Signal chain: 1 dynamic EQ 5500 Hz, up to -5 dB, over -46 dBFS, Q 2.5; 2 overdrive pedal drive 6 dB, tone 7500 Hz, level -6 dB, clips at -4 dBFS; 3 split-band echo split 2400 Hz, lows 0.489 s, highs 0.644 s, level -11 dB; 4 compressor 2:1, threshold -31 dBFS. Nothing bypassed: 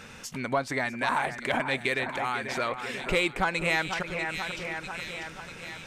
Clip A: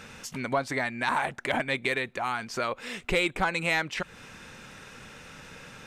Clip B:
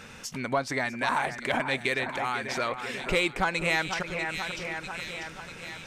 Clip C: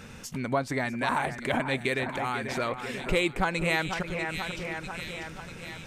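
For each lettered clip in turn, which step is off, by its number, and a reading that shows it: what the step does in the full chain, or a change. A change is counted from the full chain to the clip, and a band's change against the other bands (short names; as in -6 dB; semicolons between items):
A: 3, momentary loudness spread change +9 LU; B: 1, 8 kHz band +1.5 dB; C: 2, 125 Hz band +5.0 dB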